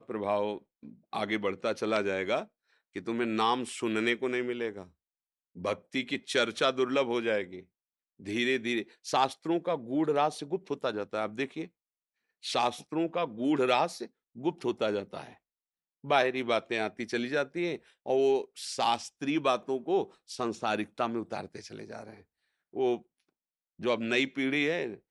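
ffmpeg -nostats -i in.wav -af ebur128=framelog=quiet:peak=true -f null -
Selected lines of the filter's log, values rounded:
Integrated loudness:
  I:         -30.8 LUFS
  Threshold: -41.4 LUFS
Loudness range:
  LRA:         3.6 LU
  Threshold: -51.8 LUFS
  LRA low:   -34.0 LUFS
  LRA high:  -30.5 LUFS
True peak:
  Peak:      -10.7 dBFS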